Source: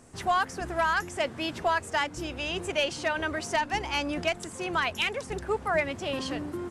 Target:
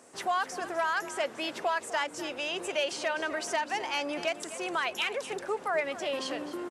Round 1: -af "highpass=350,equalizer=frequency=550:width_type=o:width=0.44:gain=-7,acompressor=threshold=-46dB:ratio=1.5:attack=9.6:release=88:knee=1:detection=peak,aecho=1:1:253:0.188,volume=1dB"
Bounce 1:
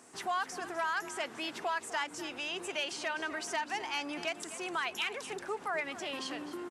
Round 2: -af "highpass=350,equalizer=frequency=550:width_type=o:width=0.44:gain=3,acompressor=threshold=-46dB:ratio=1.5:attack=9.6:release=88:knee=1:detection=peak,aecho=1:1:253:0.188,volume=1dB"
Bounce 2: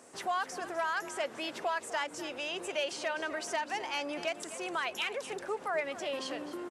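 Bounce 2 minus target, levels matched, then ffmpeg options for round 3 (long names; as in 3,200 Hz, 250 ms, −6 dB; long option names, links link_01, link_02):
downward compressor: peak gain reduction +3.5 dB
-af "highpass=350,equalizer=frequency=550:width_type=o:width=0.44:gain=3,acompressor=threshold=-35.5dB:ratio=1.5:attack=9.6:release=88:knee=1:detection=peak,aecho=1:1:253:0.188,volume=1dB"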